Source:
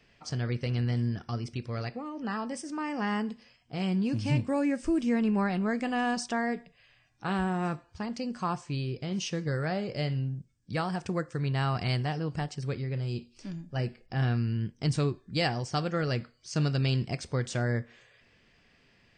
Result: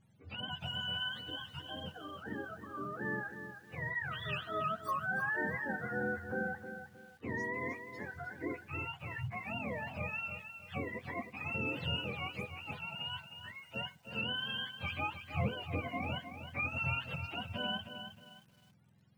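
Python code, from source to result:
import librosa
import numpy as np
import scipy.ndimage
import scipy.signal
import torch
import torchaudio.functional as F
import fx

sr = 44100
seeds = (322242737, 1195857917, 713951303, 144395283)

y = fx.octave_mirror(x, sr, pivot_hz=600.0)
y = fx.echo_crushed(y, sr, ms=312, feedback_pct=35, bits=9, wet_db=-9)
y = y * 10.0 ** (-7.0 / 20.0)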